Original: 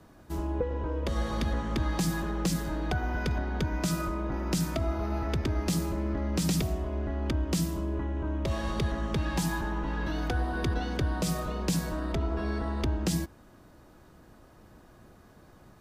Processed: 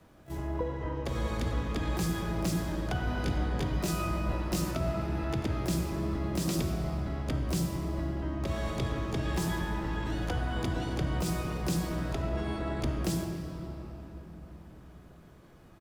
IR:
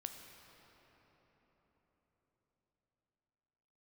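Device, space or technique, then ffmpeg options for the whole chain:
shimmer-style reverb: -filter_complex "[0:a]asplit=2[link_01][link_02];[link_02]asetrate=88200,aresample=44100,atempo=0.5,volume=-7dB[link_03];[link_01][link_03]amix=inputs=2:normalize=0[link_04];[1:a]atrim=start_sample=2205[link_05];[link_04][link_05]afir=irnorm=-1:irlink=0,asettb=1/sr,asplit=3[link_06][link_07][link_08];[link_06]atrim=end=3.054[link_09];[link_07]atrim=start=3.05:end=4.71,asetpts=PTS-STARTPTS,afade=type=in:duration=0.004:curve=qsin,afade=type=out:start_time=1.656:duration=0.004:curve=qsin,asplit=2[link_10][link_11];[link_11]adelay=20,volume=-4dB[link_12];[link_10][link_12]amix=inputs=2:normalize=0,atrim=end_sample=73206[link_13];[link_08]atrim=start=4.706[link_14];[link_09][link_13]acrossfade=duration=0.004:curve1=hsin:curve2=qsin[link_15];[link_15][link_14]acrossfade=duration=0.004:curve1=qsin:curve2=hsin"

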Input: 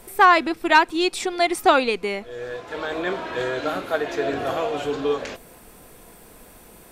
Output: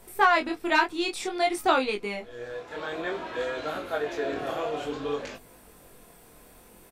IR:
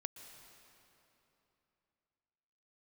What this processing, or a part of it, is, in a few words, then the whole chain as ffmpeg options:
double-tracked vocal: -filter_complex "[0:a]asplit=2[link_01][link_02];[link_02]adelay=20,volume=-12.5dB[link_03];[link_01][link_03]amix=inputs=2:normalize=0,flanger=delay=19:depth=7.9:speed=0.55,volume=-3dB"

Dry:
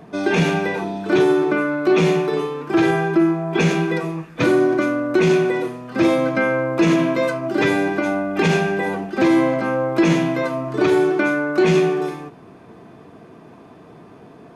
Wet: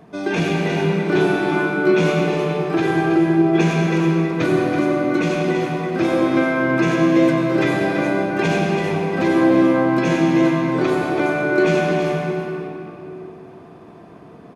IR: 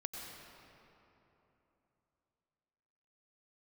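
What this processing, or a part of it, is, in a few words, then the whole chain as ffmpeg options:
cave: -filter_complex "[0:a]aecho=1:1:329:0.398[link_01];[1:a]atrim=start_sample=2205[link_02];[link_01][link_02]afir=irnorm=-1:irlink=0,asettb=1/sr,asplit=3[link_03][link_04][link_05];[link_03]atrim=end=0.674[link_06];[link_04]atrim=start=0.67:end=2.28,asetpts=PTS-STARTPTS,afade=type=in:duration=0.004:curve=qsin,afade=type=out:start_time=1.606:duration=0.004:curve=qsin,asplit=2[link_07][link_08];[link_08]adelay=25,volume=-5dB[link_09];[link_07][link_09]amix=inputs=2:normalize=0,atrim=end_sample=71001[link_10];[link_05]atrim=start=2.276[link_11];[link_06][link_10]acrossfade=duration=0.004:curve1=hsin:curve2=qsin[link_12];[link_12][link_11]acrossfade=duration=0.004:curve1=qsin:curve2=hsin"

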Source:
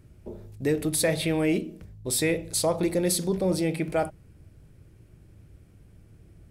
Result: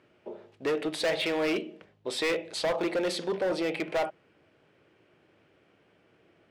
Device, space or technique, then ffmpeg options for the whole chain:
megaphone: -af "highpass=500,lowpass=2900,equalizer=frequency=3000:width_type=o:width=0.34:gain=5,asoftclip=type=hard:threshold=-29dB,volume=5dB"

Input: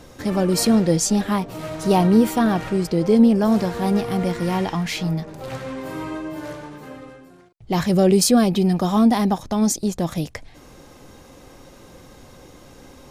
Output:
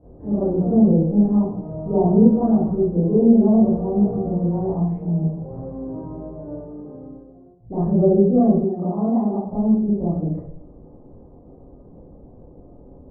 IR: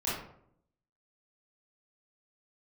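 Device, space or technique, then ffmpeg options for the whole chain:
next room: -filter_complex "[0:a]lowpass=frequency=680:width=0.5412,lowpass=frequency=680:width=1.3066[link_01];[1:a]atrim=start_sample=2205[link_02];[link_01][link_02]afir=irnorm=-1:irlink=0,asettb=1/sr,asplit=3[link_03][link_04][link_05];[link_03]atrim=end=8.644[link_06];[link_04]atrim=start=8.64:end=9.53,asetpts=PTS-STARTPTS,afade=type=in:duration=0.004:curve=qsin,afade=type=out:start_time=0.886:duration=0.004:curve=qsin,aemphasis=mode=production:type=bsi[link_07];[link_05]atrim=start=9.526[link_08];[link_06][link_07]acrossfade=duration=0.004:curve1=hsin:curve2=qsin[link_09];[link_09][link_08]acrossfade=duration=0.004:curve1=qsin:curve2=hsin,volume=-7dB"

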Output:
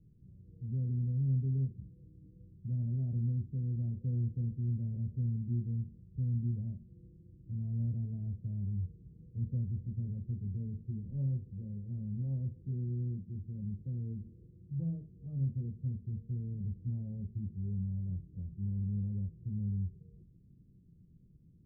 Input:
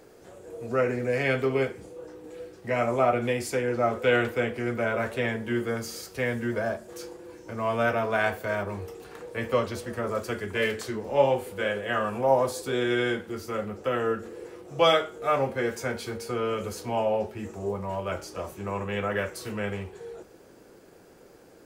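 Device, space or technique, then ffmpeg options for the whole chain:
the neighbour's flat through the wall: -af "lowpass=frequency=160:width=0.5412,lowpass=frequency=160:width=1.3066,equalizer=frequency=160:width_type=o:width=0.64:gain=4,volume=3.5dB"

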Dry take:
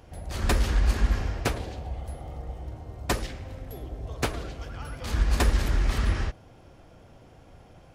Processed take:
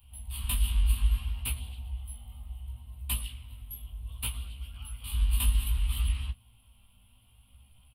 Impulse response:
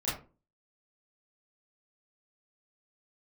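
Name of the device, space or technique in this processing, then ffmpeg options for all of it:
double-tracked vocal: -filter_complex "[0:a]asplit=2[link_01][link_02];[link_02]adelay=16,volume=-4dB[link_03];[link_01][link_03]amix=inputs=2:normalize=0,flanger=delay=15.5:depth=5.7:speed=0.65,firequalizer=gain_entry='entry(100,0);entry(150,-23);entry(220,-4);entry(310,-28);entry(640,-22);entry(1000,-7);entry(1700,-19);entry(2900,8);entry(6200,-25);entry(9200,14)':delay=0.05:min_phase=1,volume=-3dB"

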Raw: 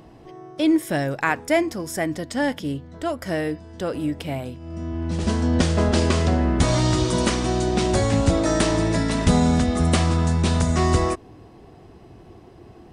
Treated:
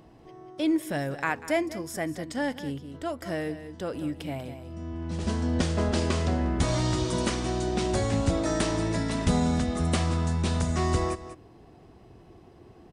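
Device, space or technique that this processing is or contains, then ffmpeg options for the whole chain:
ducked delay: -filter_complex "[0:a]asplit=3[link_01][link_02][link_03];[link_02]adelay=192,volume=-8dB[link_04];[link_03]apad=whole_len=578373[link_05];[link_04][link_05]sidechaincompress=threshold=-27dB:ratio=8:attack=21:release=448[link_06];[link_01][link_06]amix=inputs=2:normalize=0,volume=-6.5dB"

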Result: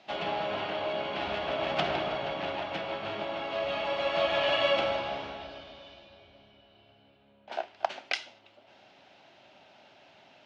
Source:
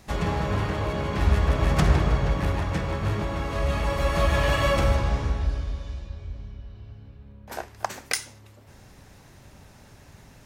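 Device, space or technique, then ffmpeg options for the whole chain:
phone earpiece: -af "highpass=440,equalizer=frequency=460:width_type=q:width=4:gain=-8,equalizer=frequency=660:width_type=q:width=4:gain=6,equalizer=frequency=1100:width_type=q:width=4:gain=-8,equalizer=frequency=1800:width_type=q:width=4:gain=-7,equalizer=frequency=3000:width_type=q:width=4:gain=6,lowpass=frequency=4100:width=0.5412,lowpass=frequency=4100:width=1.3066"

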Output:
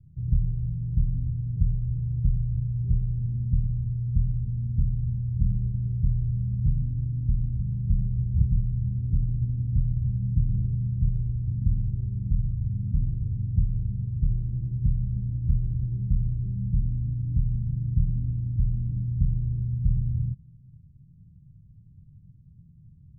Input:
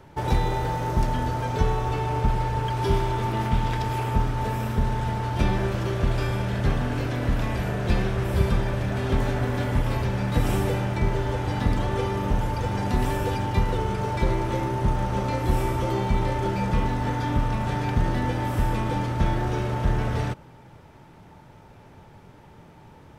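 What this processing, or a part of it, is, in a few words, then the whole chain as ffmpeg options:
the neighbour's flat through the wall: -af "lowpass=frequency=150:width=0.5412,lowpass=frequency=150:width=1.3066,equalizer=frequency=160:width_type=o:width=0.77:gain=3.5"

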